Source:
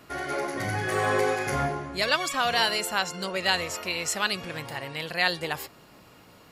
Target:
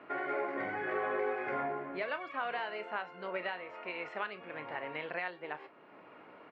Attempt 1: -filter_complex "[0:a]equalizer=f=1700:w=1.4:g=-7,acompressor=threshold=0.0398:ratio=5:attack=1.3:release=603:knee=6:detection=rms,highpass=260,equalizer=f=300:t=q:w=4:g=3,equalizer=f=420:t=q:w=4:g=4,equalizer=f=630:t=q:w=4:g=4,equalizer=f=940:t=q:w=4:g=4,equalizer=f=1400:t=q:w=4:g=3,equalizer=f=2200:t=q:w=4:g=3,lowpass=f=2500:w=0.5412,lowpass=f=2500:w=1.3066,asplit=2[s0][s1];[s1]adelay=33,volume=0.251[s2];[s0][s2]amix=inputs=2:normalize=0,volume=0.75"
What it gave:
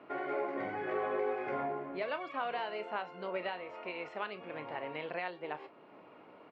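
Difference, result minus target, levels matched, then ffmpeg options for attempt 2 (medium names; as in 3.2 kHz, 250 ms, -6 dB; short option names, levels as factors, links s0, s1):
2 kHz band -3.5 dB
-filter_complex "[0:a]acompressor=threshold=0.0398:ratio=5:attack=1.3:release=603:knee=6:detection=rms,highpass=260,equalizer=f=300:t=q:w=4:g=3,equalizer=f=420:t=q:w=4:g=4,equalizer=f=630:t=q:w=4:g=4,equalizer=f=940:t=q:w=4:g=4,equalizer=f=1400:t=q:w=4:g=3,equalizer=f=2200:t=q:w=4:g=3,lowpass=f=2500:w=0.5412,lowpass=f=2500:w=1.3066,asplit=2[s0][s1];[s1]adelay=33,volume=0.251[s2];[s0][s2]amix=inputs=2:normalize=0,volume=0.75"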